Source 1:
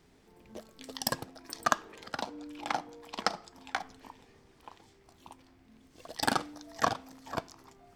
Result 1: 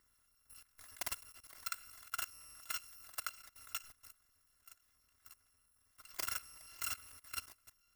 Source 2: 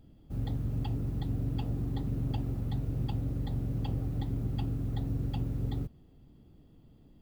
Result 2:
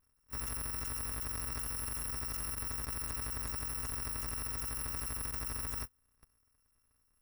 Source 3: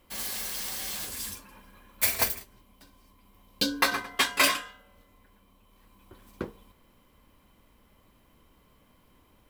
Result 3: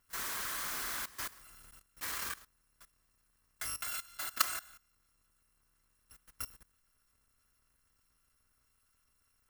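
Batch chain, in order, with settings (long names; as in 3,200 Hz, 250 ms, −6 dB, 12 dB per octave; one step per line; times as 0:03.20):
samples in bit-reversed order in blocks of 256 samples
flat-topped bell 1,400 Hz +9 dB 1.2 octaves
output level in coarse steps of 18 dB
level −2.5 dB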